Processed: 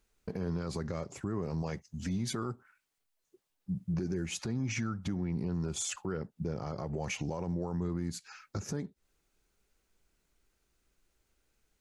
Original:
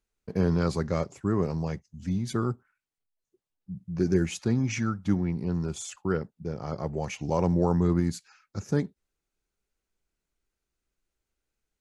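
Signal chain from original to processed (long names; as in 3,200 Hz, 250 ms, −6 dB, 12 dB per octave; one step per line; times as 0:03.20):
0:01.62–0:03.94: low-shelf EQ 290 Hz −7 dB
downward compressor 8 to 1, threshold −36 dBFS, peak gain reduction 17.5 dB
brickwall limiter −34.5 dBFS, peak gain reduction 10 dB
level +8.5 dB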